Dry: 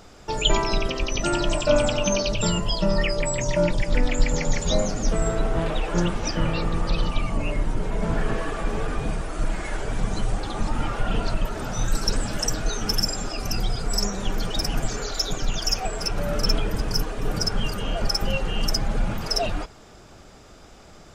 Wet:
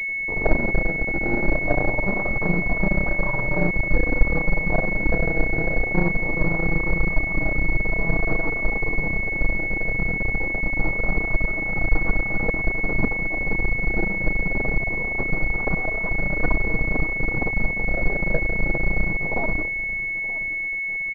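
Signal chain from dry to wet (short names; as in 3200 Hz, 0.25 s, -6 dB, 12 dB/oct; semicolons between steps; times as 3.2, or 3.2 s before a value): comb 6.2 ms, depth 78%; decimation with a swept rate 26×, swing 100% 0.23 Hz; half-wave rectifier; echo 0.925 s -16.5 dB; pulse-width modulation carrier 2200 Hz; gain +1 dB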